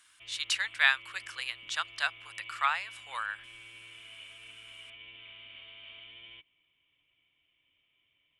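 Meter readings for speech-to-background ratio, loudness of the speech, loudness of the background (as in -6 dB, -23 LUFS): 16.0 dB, -31.5 LUFS, -47.5 LUFS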